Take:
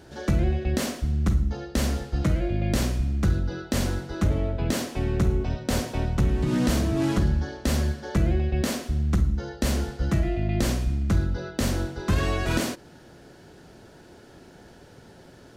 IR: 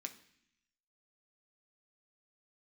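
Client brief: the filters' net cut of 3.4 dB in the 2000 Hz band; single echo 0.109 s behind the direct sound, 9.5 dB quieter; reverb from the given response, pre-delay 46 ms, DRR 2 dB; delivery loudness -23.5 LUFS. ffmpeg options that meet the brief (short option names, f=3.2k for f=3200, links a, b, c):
-filter_complex "[0:a]equalizer=f=2k:t=o:g=-4.5,aecho=1:1:109:0.335,asplit=2[a][b];[1:a]atrim=start_sample=2205,adelay=46[c];[b][c]afir=irnorm=-1:irlink=0,volume=1dB[d];[a][d]amix=inputs=2:normalize=0,volume=0.5dB"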